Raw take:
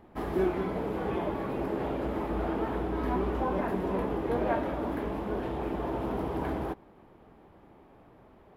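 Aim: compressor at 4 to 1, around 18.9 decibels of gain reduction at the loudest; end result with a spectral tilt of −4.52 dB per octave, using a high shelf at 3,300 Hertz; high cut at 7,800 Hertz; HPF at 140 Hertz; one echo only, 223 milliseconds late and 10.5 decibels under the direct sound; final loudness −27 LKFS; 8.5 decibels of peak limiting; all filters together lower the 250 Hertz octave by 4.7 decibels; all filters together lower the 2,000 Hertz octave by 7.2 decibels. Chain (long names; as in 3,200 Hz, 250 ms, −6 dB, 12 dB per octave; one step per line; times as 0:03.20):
high-pass filter 140 Hz
low-pass filter 7,800 Hz
parametric band 250 Hz −6 dB
parametric band 2,000 Hz −8.5 dB
high-shelf EQ 3,300 Hz −4.5 dB
downward compressor 4 to 1, threshold −50 dBFS
brickwall limiter −45 dBFS
single-tap delay 223 ms −10.5 dB
level +27 dB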